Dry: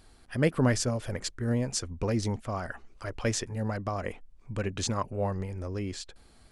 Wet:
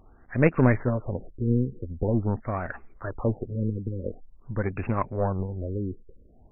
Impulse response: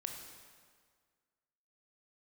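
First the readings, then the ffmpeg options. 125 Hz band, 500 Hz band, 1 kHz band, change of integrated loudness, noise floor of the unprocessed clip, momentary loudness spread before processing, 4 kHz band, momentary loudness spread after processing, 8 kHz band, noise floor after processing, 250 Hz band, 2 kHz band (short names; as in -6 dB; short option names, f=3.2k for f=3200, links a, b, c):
+4.5 dB, +3.5 dB, +2.5 dB, +3.5 dB, -57 dBFS, 14 LU, under -30 dB, 14 LU, under -40 dB, -54 dBFS, +4.5 dB, +2.5 dB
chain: -af "aeval=exprs='0.282*(cos(1*acos(clip(val(0)/0.282,-1,1)))-cos(1*PI/2))+0.0316*(cos(3*acos(clip(val(0)/0.282,-1,1)))-cos(3*PI/2))+0.01*(cos(8*acos(clip(val(0)/0.282,-1,1)))-cos(8*PI/2))':c=same,afftfilt=real='re*lt(b*sr/1024,490*pow(2800/490,0.5+0.5*sin(2*PI*0.46*pts/sr)))':imag='im*lt(b*sr/1024,490*pow(2800/490,0.5+0.5*sin(2*PI*0.46*pts/sr)))':win_size=1024:overlap=0.75,volume=7dB"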